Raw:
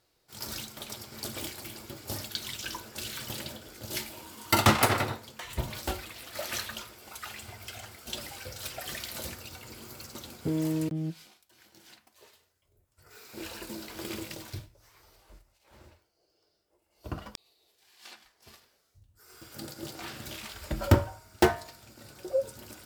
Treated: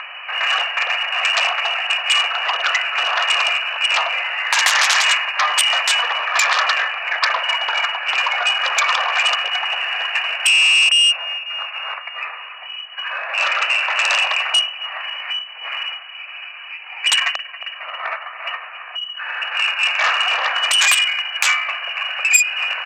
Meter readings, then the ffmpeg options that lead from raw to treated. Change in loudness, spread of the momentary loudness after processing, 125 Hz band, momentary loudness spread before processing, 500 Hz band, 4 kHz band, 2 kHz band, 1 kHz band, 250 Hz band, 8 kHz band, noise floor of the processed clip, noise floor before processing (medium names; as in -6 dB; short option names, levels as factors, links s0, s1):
+16.5 dB, 14 LU, under -40 dB, 20 LU, +2.5 dB, +23.0 dB, +23.0 dB, +14.5 dB, under -25 dB, +16.0 dB, -35 dBFS, -73 dBFS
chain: -af "asoftclip=type=hard:threshold=0.211,acompressor=threshold=0.0251:ratio=4,lowpass=f=2600:t=q:w=0.5098,lowpass=f=2600:t=q:w=0.6013,lowpass=f=2600:t=q:w=0.9,lowpass=f=2600:t=q:w=2.563,afreqshift=-3000,highshelf=f=2100:g=-9.5,aecho=1:1:1.7:0.38,aecho=1:1:273|546|819|1092|1365:0.106|0.0614|0.0356|0.0207|0.012,acompressor=mode=upward:threshold=0.00282:ratio=2.5,aemphasis=mode=reproduction:type=50fm,aeval=exprs='0.0562*(cos(1*acos(clip(val(0)/0.0562,-1,1)))-cos(1*PI/2))+0.0126*(cos(3*acos(clip(val(0)/0.0562,-1,1)))-cos(3*PI/2))+0.01*(cos(7*acos(clip(val(0)/0.0562,-1,1)))-cos(7*PI/2))+0.00126*(cos(8*acos(clip(val(0)/0.0562,-1,1)))-cos(8*PI/2))':c=same,highpass=f=810:w=0.5412,highpass=f=810:w=1.3066,alimiter=level_in=56.2:limit=0.891:release=50:level=0:latency=1,volume=0.891"